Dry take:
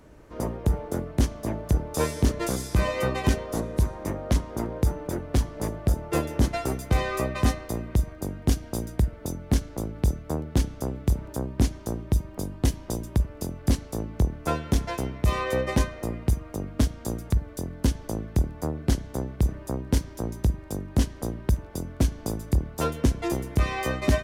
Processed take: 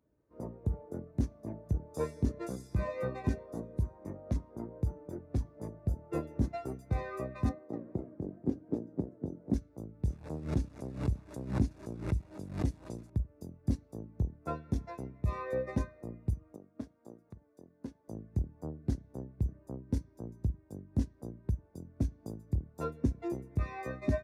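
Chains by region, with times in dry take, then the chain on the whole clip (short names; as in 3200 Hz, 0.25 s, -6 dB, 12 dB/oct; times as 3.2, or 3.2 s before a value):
7.49–9.54 HPF 310 Hz + tilt -4 dB/oct + warbling echo 0.247 s, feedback 34%, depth 202 cents, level -3 dB
10.05–13.1 delta modulation 64 kbps, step -34 dBFS + backwards sustainer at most 87 dB/s
16.56–18.08 HPF 400 Hz 6 dB/oct + high shelf 2900 Hz -8.5 dB
whole clip: HPF 73 Hz; notch 3100 Hz, Q 8.8; spectral expander 1.5:1; gain -8.5 dB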